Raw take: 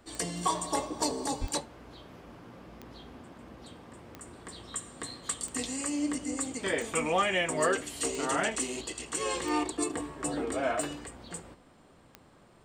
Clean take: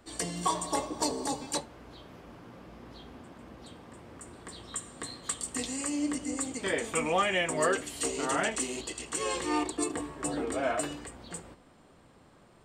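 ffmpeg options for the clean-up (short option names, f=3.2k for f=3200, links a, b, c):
-filter_complex "[0:a]adeclick=t=4,asplit=3[a][b][c];[a]afade=t=out:st=1.4:d=0.02[d];[b]highpass=f=140:w=0.5412,highpass=f=140:w=1.3066,afade=t=in:st=1.4:d=0.02,afade=t=out:st=1.52:d=0.02[e];[c]afade=t=in:st=1.52:d=0.02[f];[d][e][f]amix=inputs=3:normalize=0"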